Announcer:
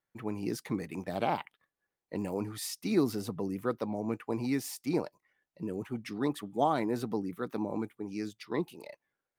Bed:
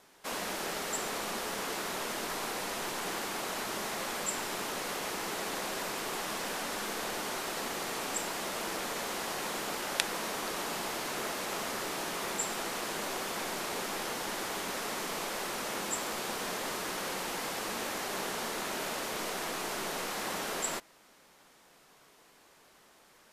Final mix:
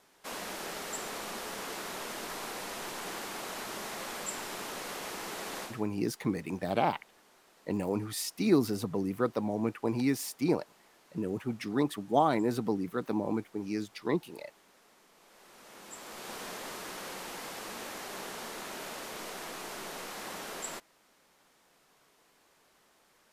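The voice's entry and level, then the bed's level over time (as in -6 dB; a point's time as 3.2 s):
5.55 s, +2.5 dB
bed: 5.63 s -3.5 dB
5.88 s -26.5 dB
15.13 s -26.5 dB
16.34 s -5.5 dB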